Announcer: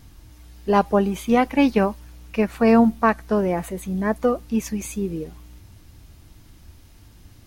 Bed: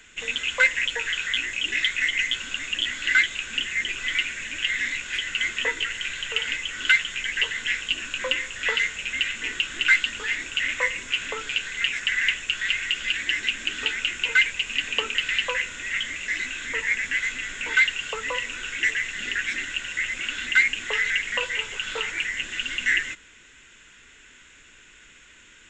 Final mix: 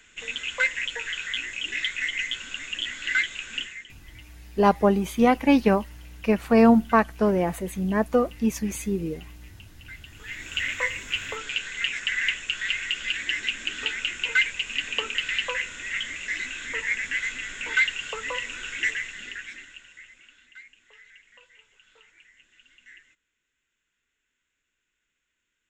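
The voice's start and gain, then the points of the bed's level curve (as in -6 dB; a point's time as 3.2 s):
3.90 s, -1.0 dB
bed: 3.61 s -4.5 dB
4 s -26.5 dB
9.92 s -26.5 dB
10.52 s -2.5 dB
18.88 s -2.5 dB
20.53 s -28.5 dB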